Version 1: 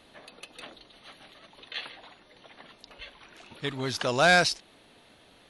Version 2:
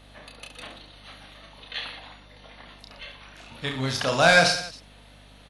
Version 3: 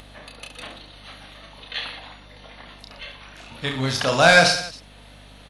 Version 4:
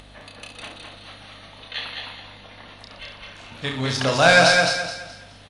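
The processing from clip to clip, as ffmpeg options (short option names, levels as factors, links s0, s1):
-af "equalizer=f=370:w=5.4:g=-10.5,aecho=1:1:30|69|119.7|185.6|271.3:0.631|0.398|0.251|0.158|0.1,aeval=exprs='val(0)+0.002*(sin(2*PI*50*n/s)+sin(2*PI*2*50*n/s)/2+sin(2*PI*3*50*n/s)/3+sin(2*PI*4*50*n/s)/4+sin(2*PI*5*50*n/s)/5)':c=same,volume=1.26"
-af "acompressor=mode=upward:threshold=0.00562:ratio=2.5,volume=1.5"
-af "aresample=22050,aresample=44100,aecho=1:1:211|422|633|844:0.631|0.196|0.0606|0.0188,volume=0.891"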